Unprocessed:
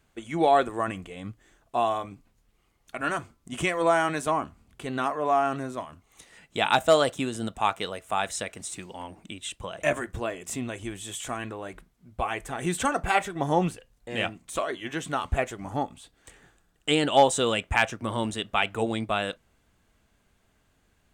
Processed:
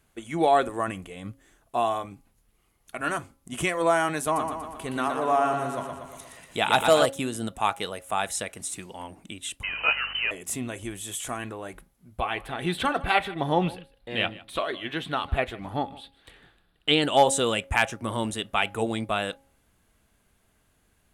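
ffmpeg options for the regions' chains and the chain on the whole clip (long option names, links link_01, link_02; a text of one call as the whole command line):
ffmpeg -i in.wav -filter_complex "[0:a]asettb=1/sr,asplit=3[link_01][link_02][link_03];[link_01]atrim=end=4.244[link_04];[link_02]atrim=start=4.24:end=7.06,asetpts=PTS-STARTPTS,afade=type=in:duration=0.004:curve=qsin,afade=type=out:start_time=2.816:duration=0.004:curve=qsin,acompressor=mode=upward:threshold=-45dB:ratio=2.5:attack=3.2:release=140:knee=2.83:detection=peak,aecho=1:1:119|238|357|476|595|714|833|952:0.501|0.296|0.174|0.103|0.0607|0.0358|0.0211|0.0125,atrim=end_sample=124362[link_05];[link_03]atrim=start=7.056[link_06];[link_04][link_05]acrossfade=duration=0.004:curve1=hsin:curve2=qsin[link_07];[link_07][link_06]acrossfade=duration=0.004:curve1=qsin:curve2=hsin,asettb=1/sr,asplit=3[link_08][link_09][link_10];[link_08]atrim=end=9.634[link_11];[link_09]atrim=start=9.63:end=10.31,asetpts=PTS-STARTPTS,afade=type=in:duration=0.004:curve=qsin,afade=type=out:start_time=0.676:duration=0.004:curve=qsin,aeval=exprs='val(0)+0.5*0.0282*sgn(val(0))':channel_layout=same,lowpass=frequency=2600:width_type=q:width=0.5098,lowpass=frequency=2600:width_type=q:width=0.6013,lowpass=frequency=2600:width_type=q:width=0.9,lowpass=frequency=2600:width_type=q:width=2.563,afreqshift=-3100,aeval=exprs='val(0)+0.00251*(sin(2*PI*50*n/s)+sin(2*PI*2*50*n/s)/2+sin(2*PI*3*50*n/s)/3+sin(2*PI*4*50*n/s)/4+sin(2*PI*5*50*n/s)/5)':channel_layout=same[link_12];[link_10]atrim=start=10.306[link_13];[link_11][link_12]acrossfade=duration=0.004:curve1=hsin:curve2=qsin[link_14];[link_14][link_13]acrossfade=duration=0.004:curve1=qsin:curve2=hsin,asettb=1/sr,asplit=3[link_15][link_16][link_17];[link_15]atrim=end=12.204[link_18];[link_16]atrim=start=12.2:end=17.02,asetpts=PTS-STARTPTS,afade=type=in:duration=0.004:curve=qsin,afade=type=out:start_time=4.816:duration=0.004:curve=qsin,highshelf=frequency=5100:width_type=q:width=3:gain=-9.5,aecho=1:1:154:0.0944,atrim=end_sample=212562[link_19];[link_17]atrim=start=17.016[link_20];[link_18][link_19]acrossfade=duration=0.004:curve1=hsin:curve2=qsin[link_21];[link_21][link_20]acrossfade=duration=0.004:curve1=qsin:curve2=hsin,equalizer=frequency=11000:width=2.7:gain=13.5,bandreject=frequency=273.3:width_type=h:width=4,bandreject=frequency=546.6:width_type=h:width=4,bandreject=frequency=819.9:width_type=h:width=4" out.wav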